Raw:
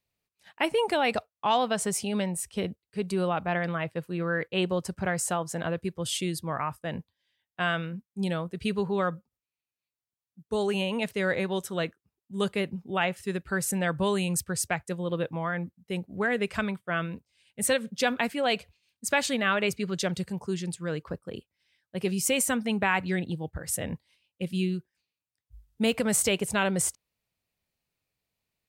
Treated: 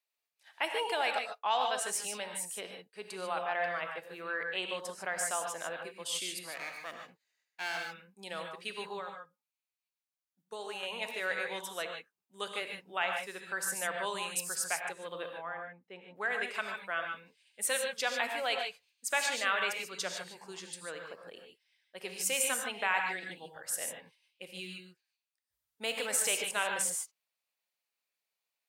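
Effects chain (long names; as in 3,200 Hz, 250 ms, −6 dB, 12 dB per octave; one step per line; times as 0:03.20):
0:06.42–0:07.78: lower of the sound and its delayed copy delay 0.45 ms
high-pass filter 690 Hz 12 dB per octave
0:08.97–0:10.83: downward compressor 12 to 1, threshold −34 dBFS, peak gain reduction 10 dB
0:15.34–0:16.16: head-to-tape spacing loss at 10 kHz 32 dB
reverb whose tail is shaped and stops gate 170 ms rising, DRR 3 dB
level −4.5 dB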